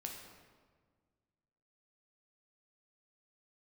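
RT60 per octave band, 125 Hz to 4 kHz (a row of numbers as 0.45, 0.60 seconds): 2.3, 2.1, 1.7, 1.5, 1.3, 1.0 seconds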